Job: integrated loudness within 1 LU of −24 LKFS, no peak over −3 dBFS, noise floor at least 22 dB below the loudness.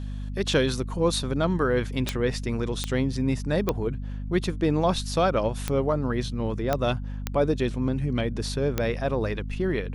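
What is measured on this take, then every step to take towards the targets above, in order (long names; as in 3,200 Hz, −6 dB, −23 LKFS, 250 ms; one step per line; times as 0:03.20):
number of clicks 7; mains hum 50 Hz; hum harmonics up to 250 Hz; level of the hum −30 dBFS; integrated loudness −26.5 LKFS; sample peak −8.5 dBFS; target loudness −24.0 LKFS
→ click removal
hum removal 50 Hz, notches 5
level +2.5 dB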